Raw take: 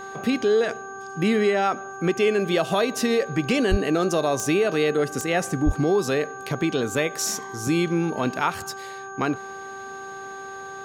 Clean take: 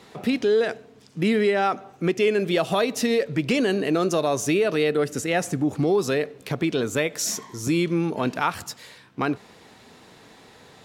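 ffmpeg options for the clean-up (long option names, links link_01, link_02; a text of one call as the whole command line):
ffmpeg -i in.wav -filter_complex "[0:a]adeclick=threshold=4,bandreject=frequency=389.7:width_type=h:width=4,bandreject=frequency=779.4:width_type=h:width=4,bandreject=frequency=1169.1:width_type=h:width=4,bandreject=frequency=1558.8:width_type=h:width=4,bandreject=frequency=6600:width=30,asplit=3[link_01][link_02][link_03];[link_01]afade=type=out:start_time=3.7:duration=0.02[link_04];[link_02]highpass=frequency=140:width=0.5412,highpass=frequency=140:width=1.3066,afade=type=in:start_time=3.7:duration=0.02,afade=type=out:start_time=3.82:duration=0.02[link_05];[link_03]afade=type=in:start_time=3.82:duration=0.02[link_06];[link_04][link_05][link_06]amix=inputs=3:normalize=0,asplit=3[link_07][link_08][link_09];[link_07]afade=type=out:start_time=5.65:duration=0.02[link_10];[link_08]highpass=frequency=140:width=0.5412,highpass=frequency=140:width=1.3066,afade=type=in:start_time=5.65:duration=0.02,afade=type=out:start_time=5.77:duration=0.02[link_11];[link_09]afade=type=in:start_time=5.77:duration=0.02[link_12];[link_10][link_11][link_12]amix=inputs=3:normalize=0" out.wav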